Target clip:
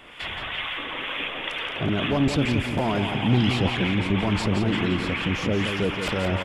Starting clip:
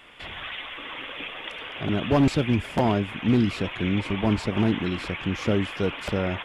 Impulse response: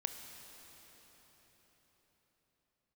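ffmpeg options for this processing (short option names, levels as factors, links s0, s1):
-filter_complex "[0:a]acrossover=split=840[s0][s1];[s0]aeval=exprs='val(0)*(1-0.5/2+0.5/2*cos(2*PI*2.2*n/s))':c=same[s2];[s1]aeval=exprs='val(0)*(1-0.5/2-0.5/2*cos(2*PI*2.2*n/s))':c=same[s3];[s2][s3]amix=inputs=2:normalize=0,alimiter=limit=0.0708:level=0:latency=1:release=11,asettb=1/sr,asplit=3[s4][s5][s6];[s4]atrim=end=3.014[s7];[s5]atrim=start=3.01:end=3.76,asetpts=PTS-STARTPTS,afade=t=in:d=0.004:c=qsin,afade=t=out:st=0.746:d=0.004:c=qsin,equalizer=f=125:t=o:w=0.33:g=8,equalizer=f=800:t=o:w=0.33:g=12,equalizer=f=3150:t=o:w=0.33:g=6[s8];[s6]atrim=start=3.756[s9];[s7][s8]acrossfade=d=0.004:c1=hsin:c2=qsin[s10];[s10][s9]acrossfade=d=0.004:c1=qsin:c2=hsin,aecho=1:1:173|346|519|692|865|1038:0.447|0.214|0.103|0.0494|0.0237|0.0114,volume=2.24"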